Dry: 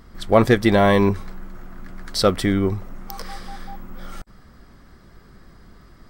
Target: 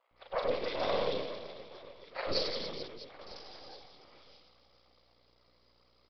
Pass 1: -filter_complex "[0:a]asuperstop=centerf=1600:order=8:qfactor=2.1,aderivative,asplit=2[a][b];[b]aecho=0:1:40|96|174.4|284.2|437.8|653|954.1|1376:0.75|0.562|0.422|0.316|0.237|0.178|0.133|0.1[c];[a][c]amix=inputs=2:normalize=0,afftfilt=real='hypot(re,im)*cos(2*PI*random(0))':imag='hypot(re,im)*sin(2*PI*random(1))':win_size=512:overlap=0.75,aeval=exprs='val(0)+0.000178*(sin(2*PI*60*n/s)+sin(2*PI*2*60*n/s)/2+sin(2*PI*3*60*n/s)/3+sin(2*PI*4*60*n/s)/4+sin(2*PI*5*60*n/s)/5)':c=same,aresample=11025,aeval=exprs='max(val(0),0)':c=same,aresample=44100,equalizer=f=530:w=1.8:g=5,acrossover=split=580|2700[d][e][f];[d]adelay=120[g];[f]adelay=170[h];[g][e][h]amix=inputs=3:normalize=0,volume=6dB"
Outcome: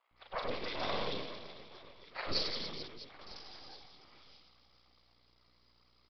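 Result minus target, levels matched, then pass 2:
500 Hz band -4.5 dB
-filter_complex "[0:a]asuperstop=centerf=1600:order=8:qfactor=2.1,aderivative,asplit=2[a][b];[b]aecho=0:1:40|96|174.4|284.2|437.8|653|954.1|1376:0.75|0.562|0.422|0.316|0.237|0.178|0.133|0.1[c];[a][c]amix=inputs=2:normalize=0,afftfilt=real='hypot(re,im)*cos(2*PI*random(0))':imag='hypot(re,im)*sin(2*PI*random(1))':win_size=512:overlap=0.75,aeval=exprs='val(0)+0.000178*(sin(2*PI*60*n/s)+sin(2*PI*2*60*n/s)/2+sin(2*PI*3*60*n/s)/3+sin(2*PI*4*60*n/s)/4+sin(2*PI*5*60*n/s)/5)':c=same,aresample=11025,aeval=exprs='max(val(0),0)':c=same,aresample=44100,equalizer=f=530:w=1.8:g=15,acrossover=split=580|2700[d][e][f];[d]adelay=120[g];[f]adelay=170[h];[g][e][h]amix=inputs=3:normalize=0,volume=6dB"

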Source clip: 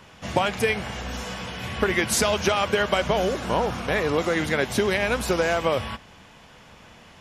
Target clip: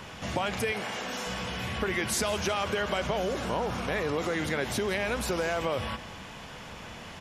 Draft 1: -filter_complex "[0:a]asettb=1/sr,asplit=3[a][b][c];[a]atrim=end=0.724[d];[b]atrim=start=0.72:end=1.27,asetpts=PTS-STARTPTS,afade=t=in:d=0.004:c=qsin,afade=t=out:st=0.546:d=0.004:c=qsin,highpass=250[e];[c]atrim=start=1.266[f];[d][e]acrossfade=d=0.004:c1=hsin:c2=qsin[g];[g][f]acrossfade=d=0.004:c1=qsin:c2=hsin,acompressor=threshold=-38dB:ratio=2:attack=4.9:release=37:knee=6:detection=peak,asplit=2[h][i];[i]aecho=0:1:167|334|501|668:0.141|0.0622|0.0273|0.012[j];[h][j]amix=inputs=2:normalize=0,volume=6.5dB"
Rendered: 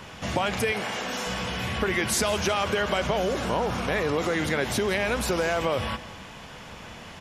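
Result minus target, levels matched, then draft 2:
compressor: peak gain reduction -4 dB
-filter_complex "[0:a]asettb=1/sr,asplit=3[a][b][c];[a]atrim=end=0.724[d];[b]atrim=start=0.72:end=1.27,asetpts=PTS-STARTPTS,afade=t=in:d=0.004:c=qsin,afade=t=out:st=0.546:d=0.004:c=qsin,highpass=250[e];[c]atrim=start=1.266[f];[d][e]acrossfade=d=0.004:c1=hsin:c2=qsin[g];[g][f]acrossfade=d=0.004:c1=qsin:c2=hsin,acompressor=threshold=-46dB:ratio=2:attack=4.9:release=37:knee=6:detection=peak,asplit=2[h][i];[i]aecho=0:1:167|334|501|668:0.141|0.0622|0.0273|0.012[j];[h][j]amix=inputs=2:normalize=0,volume=6.5dB"

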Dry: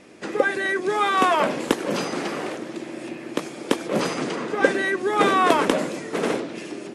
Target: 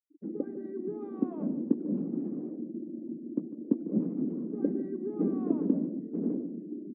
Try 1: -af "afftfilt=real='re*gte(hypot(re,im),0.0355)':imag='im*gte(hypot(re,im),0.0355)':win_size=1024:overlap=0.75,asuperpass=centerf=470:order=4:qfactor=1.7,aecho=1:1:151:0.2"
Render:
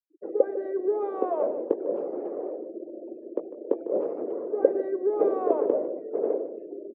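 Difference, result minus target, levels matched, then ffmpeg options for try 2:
250 Hz band -10.0 dB
-af "afftfilt=real='re*gte(hypot(re,im),0.0355)':imag='im*gte(hypot(re,im),0.0355)':win_size=1024:overlap=0.75,asuperpass=centerf=230:order=4:qfactor=1.7,aecho=1:1:151:0.2"

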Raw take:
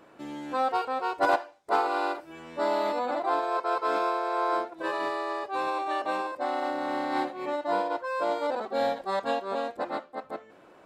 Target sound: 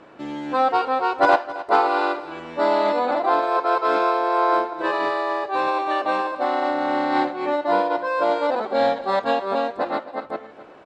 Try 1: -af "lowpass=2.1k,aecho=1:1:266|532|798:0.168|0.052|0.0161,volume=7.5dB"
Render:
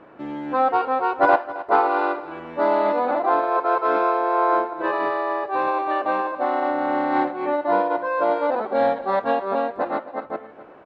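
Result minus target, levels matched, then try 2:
4000 Hz band -8.5 dB
-af "lowpass=5.2k,aecho=1:1:266|532|798:0.168|0.052|0.0161,volume=7.5dB"

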